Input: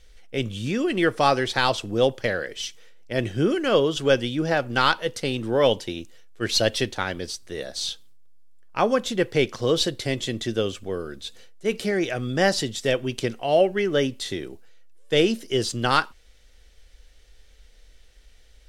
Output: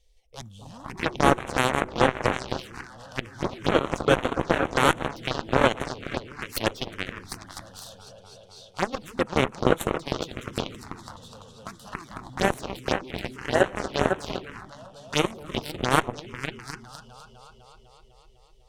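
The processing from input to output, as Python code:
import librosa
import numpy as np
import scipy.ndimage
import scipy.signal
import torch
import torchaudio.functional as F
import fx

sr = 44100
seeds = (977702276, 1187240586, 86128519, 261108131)

y = fx.echo_opening(x, sr, ms=251, hz=400, octaves=2, feedback_pct=70, wet_db=0)
y = fx.cheby_harmonics(y, sr, harmonics=(7,), levels_db=(-15,), full_scale_db=-1.5)
y = fx.env_phaser(y, sr, low_hz=240.0, high_hz=4900.0, full_db=-22.0)
y = y * librosa.db_to_amplitude(2.0)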